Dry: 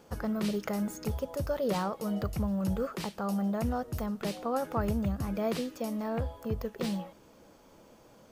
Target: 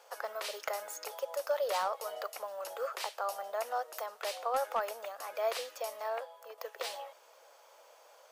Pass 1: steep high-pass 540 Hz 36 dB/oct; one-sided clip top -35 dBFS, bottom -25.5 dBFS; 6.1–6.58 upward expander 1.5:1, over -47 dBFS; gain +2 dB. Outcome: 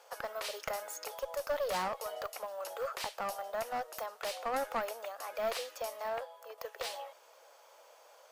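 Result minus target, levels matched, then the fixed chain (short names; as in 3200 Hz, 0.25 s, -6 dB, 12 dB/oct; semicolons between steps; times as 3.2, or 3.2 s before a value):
one-sided clip: distortion +14 dB
steep high-pass 540 Hz 36 dB/oct; one-sided clip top -25.5 dBFS, bottom -25.5 dBFS; 6.1–6.58 upward expander 1.5:1, over -47 dBFS; gain +2 dB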